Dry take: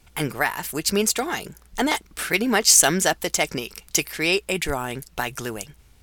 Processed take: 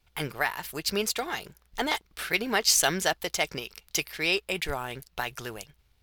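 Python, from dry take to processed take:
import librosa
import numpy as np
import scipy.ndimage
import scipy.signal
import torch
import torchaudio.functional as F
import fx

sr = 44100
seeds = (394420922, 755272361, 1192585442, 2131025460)

y = fx.law_mismatch(x, sr, coded='A')
y = fx.graphic_eq(y, sr, hz=(250, 4000, 8000), db=(-6, 4, -7))
y = y * librosa.db_to_amplitude(-4.5)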